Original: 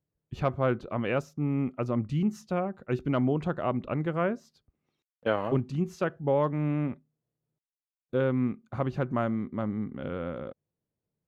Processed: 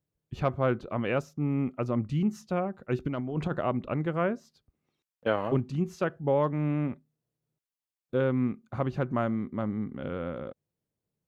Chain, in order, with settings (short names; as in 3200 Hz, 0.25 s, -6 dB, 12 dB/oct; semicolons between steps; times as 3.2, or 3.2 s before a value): 3.05–3.61 negative-ratio compressor -29 dBFS, ratio -0.5